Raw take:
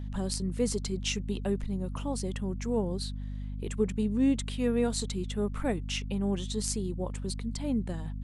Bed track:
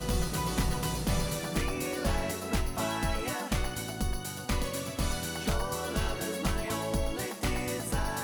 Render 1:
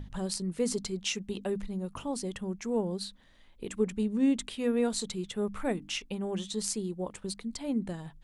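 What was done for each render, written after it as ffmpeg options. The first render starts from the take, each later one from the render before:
-af "bandreject=f=50:t=h:w=6,bandreject=f=100:t=h:w=6,bandreject=f=150:t=h:w=6,bandreject=f=200:t=h:w=6,bandreject=f=250:t=h:w=6,bandreject=f=300:t=h:w=6"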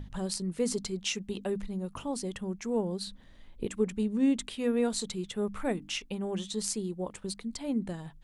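-filter_complex "[0:a]asettb=1/sr,asplit=3[a][b][c];[a]atrim=end=3.074[d];[b]atrim=start=3.07:end=3.67,asetpts=PTS-STARTPTS,afade=t=in:d=0.004:c=qsin,afade=t=out:st=0.596:d=0.004:c=qsin,lowshelf=f=480:g=8.5[e];[c]atrim=start=3.666[f];[d][e]acrossfade=d=0.004:c1=hsin:c2=qsin[g];[g][f]acrossfade=d=0.004:c1=qsin:c2=hsin"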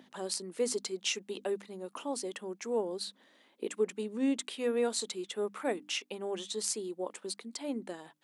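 -af "highpass=f=290:w=0.5412,highpass=f=290:w=1.3066"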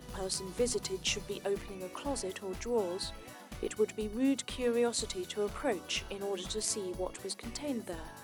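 -filter_complex "[1:a]volume=-16dB[a];[0:a][a]amix=inputs=2:normalize=0"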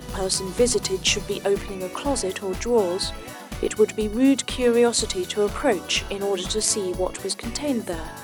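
-af "volume=12dB"

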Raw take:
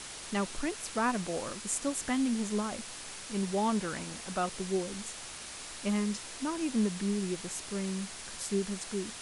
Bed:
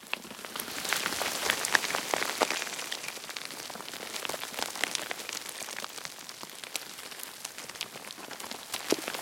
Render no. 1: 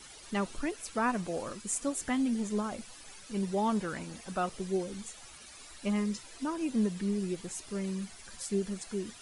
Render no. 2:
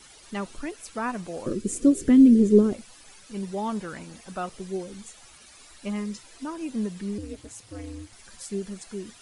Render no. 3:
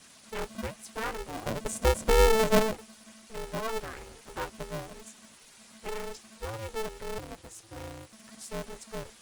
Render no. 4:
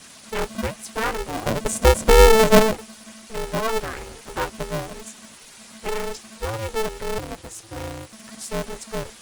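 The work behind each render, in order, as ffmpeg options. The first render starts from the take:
-af "afftdn=nr=12:nf=-44"
-filter_complex "[0:a]asettb=1/sr,asplit=3[a][b][c];[a]atrim=end=1.464[d];[b]atrim=start=1.46:end=2.73,asetpts=PTS-STARTPTS,afade=t=in:d=0.004:c=qsin,afade=t=out:st=1.266:d=0.004:c=qsin,lowshelf=f=570:t=q:w=3:g=12.5[e];[c]atrim=start=2.726[f];[d][e]acrossfade=d=0.004:c1=hsin:c2=qsin[g];[g][f]acrossfade=d=0.004:c1=qsin:c2=hsin,asettb=1/sr,asplit=3[h][i][j];[h]atrim=end=7.184[k];[i]atrim=start=7.18:end=8.13,asetpts=PTS-STARTPTS,afade=t=in:d=0.004:c=qsin,afade=t=out:st=0.946:d=0.004:c=qsin,aeval=exprs='val(0)*sin(2*PI*110*n/s)':c=same[l];[j]atrim=start=8.126[m];[k][l]acrossfade=d=0.004:c1=hsin:c2=qsin[n];[n][m]acrossfade=d=0.004:c1=qsin:c2=hsin"
-af "flanger=delay=0.9:depth=7.7:regen=57:speed=0.59:shape=triangular,aeval=exprs='val(0)*sgn(sin(2*PI*220*n/s))':c=same"
-af "volume=9.5dB"

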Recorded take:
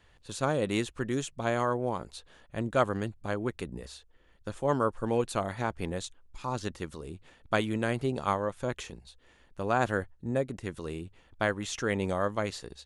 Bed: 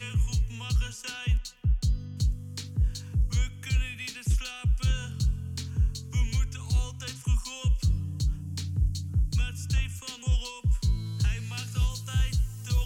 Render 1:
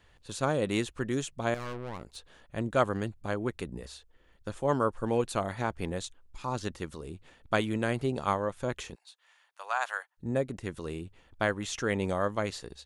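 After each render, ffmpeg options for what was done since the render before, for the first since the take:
-filter_complex "[0:a]asettb=1/sr,asplit=3[a][b][c];[a]atrim=end=1.544[d];[b]atrim=start=1.54:end=2.16,asetpts=PTS-STARTPTS,afade=t=in:d=0.004:c=qsin,afade=t=out:st=0.616:d=0.004:c=qsin,aeval=exprs='(tanh(56.2*val(0)+0.8)-tanh(0.8))/56.2':c=same[e];[c]atrim=start=2.156[f];[d][e]acrossfade=d=0.004:c1=hsin:c2=qsin[g];[g][f]acrossfade=d=0.004:c1=qsin:c2=hsin,asplit=3[h][i][j];[h]afade=t=out:st=8.94:d=0.02[k];[i]highpass=f=820:w=0.5412,highpass=f=820:w=1.3066,afade=t=in:st=8.94:d=0.02,afade=t=out:st=10.17:d=0.02[l];[j]afade=t=in:st=10.17:d=0.02[m];[k][l][m]amix=inputs=3:normalize=0"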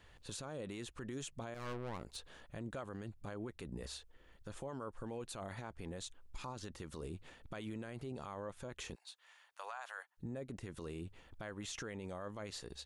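-af "acompressor=threshold=-39dB:ratio=2.5,alimiter=level_in=11dB:limit=-24dB:level=0:latency=1:release=26,volume=-11dB"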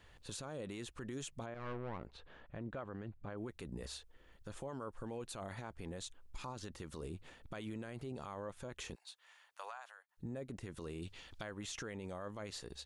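-filter_complex "[0:a]asettb=1/sr,asplit=3[a][b][c];[a]atrim=end=1.464[d];[b]atrim=start=1.46:end=3.38,asetpts=PTS-STARTPTS,afade=t=in:d=0.004:c=qsin,afade=t=out:st=1.916:d=0.004:c=qsin,lowpass=2.5k[e];[c]atrim=start=3.376[f];[d][e]acrossfade=d=0.004:c1=hsin:c2=qsin[g];[g][f]acrossfade=d=0.004:c1=qsin:c2=hsin,asettb=1/sr,asplit=3[h][i][j];[h]atrim=end=11.024[k];[i]atrim=start=11.02:end=11.43,asetpts=PTS-STARTPTS,afade=t=in:d=0.004:c=qsin,afade=t=out:st=0.406:d=0.004:c=qsin,equalizer=f=4.5k:w=0.52:g=14.5[l];[j]atrim=start=11.426[m];[k][l]acrossfade=d=0.004:c1=hsin:c2=qsin[n];[n][m]acrossfade=d=0.004:c1=qsin:c2=hsin,asplit=2[o][p];[o]atrim=end=10.09,asetpts=PTS-STARTPTS,afade=t=out:st=9.63:d=0.46[q];[p]atrim=start=10.09,asetpts=PTS-STARTPTS,afade=t=in:d=0.004:c=hsin[r];[q][r]concat=n=2:v=0:a=1"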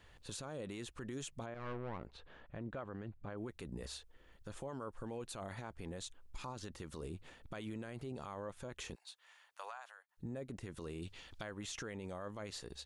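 -af anull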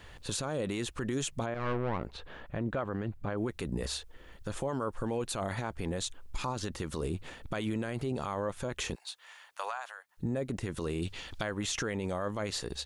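-af "volume=11dB"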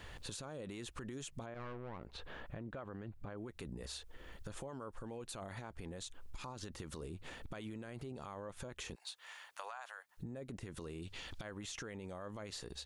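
-af "alimiter=level_in=4dB:limit=-24dB:level=0:latency=1:release=89,volume=-4dB,acompressor=threshold=-44dB:ratio=4"

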